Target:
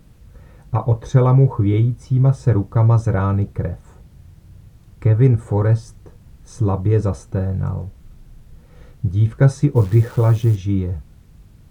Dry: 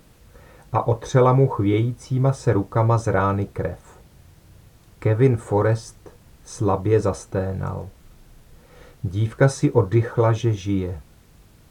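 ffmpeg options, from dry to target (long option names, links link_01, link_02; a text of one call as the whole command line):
ffmpeg -i in.wav -filter_complex "[0:a]bass=frequency=250:gain=11,treble=frequency=4000:gain=-1,asplit=3[link_01][link_02][link_03];[link_01]afade=type=out:start_time=9.75:duration=0.02[link_04];[link_02]acrusher=bits=7:dc=4:mix=0:aa=0.000001,afade=type=in:start_time=9.75:duration=0.02,afade=type=out:start_time=10.55:duration=0.02[link_05];[link_03]afade=type=in:start_time=10.55:duration=0.02[link_06];[link_04][link_05][link_06]amix=inputs=3:normalize=0,volume=-4dB" out.wav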